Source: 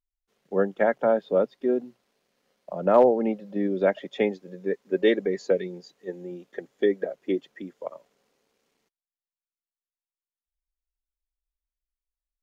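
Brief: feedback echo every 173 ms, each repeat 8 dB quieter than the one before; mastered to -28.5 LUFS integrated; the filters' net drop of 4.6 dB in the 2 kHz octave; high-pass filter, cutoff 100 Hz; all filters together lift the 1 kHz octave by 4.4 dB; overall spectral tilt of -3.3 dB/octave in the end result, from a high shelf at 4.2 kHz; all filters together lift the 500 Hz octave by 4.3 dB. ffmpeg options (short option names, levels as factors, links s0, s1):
-af "highpass=100,equalizer=f=500:t=o:g=4,equalizer=f=1000:t=o:g=6,equalizer=f=2000:t=o:g=-7.5,highshelf=f=4200:g=-3.5,aecho=1:1:173|346|519|692|865:0.398|0.159|0.0637|0.0255|0.0102,volume=0.422"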